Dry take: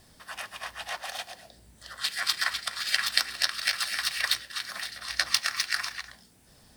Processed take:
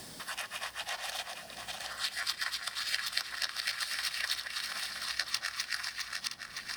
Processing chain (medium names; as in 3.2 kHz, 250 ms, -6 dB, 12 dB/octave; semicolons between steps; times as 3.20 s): backward echo that repeats 484 ms, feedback 48%, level -7.5 dB; three bands compressed up and down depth 70%; trim -7 dB